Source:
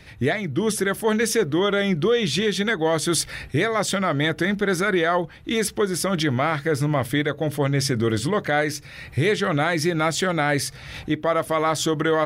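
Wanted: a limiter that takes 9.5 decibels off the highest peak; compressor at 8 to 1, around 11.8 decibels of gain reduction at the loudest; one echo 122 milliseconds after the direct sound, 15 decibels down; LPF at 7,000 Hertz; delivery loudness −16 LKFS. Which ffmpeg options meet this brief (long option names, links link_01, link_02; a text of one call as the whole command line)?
ffmpeg -i in.wav -af "lowpass=7000,acompressor=threshold=-29dB:ratio=8,alimiter=level_in=3dB:limit=-24dB:level=0:latency=1,volume=-3dB,aecho=1:1:122:0.178,volume=20dB" out.wav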